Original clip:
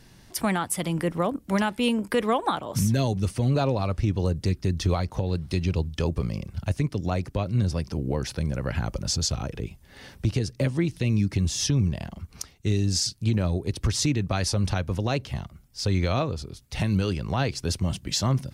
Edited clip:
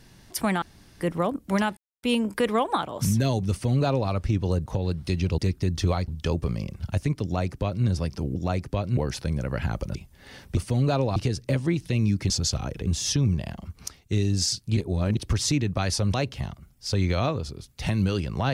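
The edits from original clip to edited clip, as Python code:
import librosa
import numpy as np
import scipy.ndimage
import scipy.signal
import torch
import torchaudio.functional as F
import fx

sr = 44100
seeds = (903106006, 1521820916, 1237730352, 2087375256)

y = fx.edit(x, sr, fx.room_tone_fill(start_s=0.62, length_s=0.39),
    fx.insert_silence(at_s=1.77, length_s=0.26),
    fx.duplicate(start_s=3.25, length_s=0.59, to_s=10.27),
    fx.move(start_s=4.4, length_s=0.7, to_s=5.82),
    fx.duplicate(start_s=6.98, length_s=0.61, to_s=8.1),
    fx.move(start_s=9.08, length_s=0.57, to_s=11.41),
    fx.reverse_span(start_s=13.31, length_s=0.4),
    fx.cut(start_s=14.68, length_s=0.39), tone=tone)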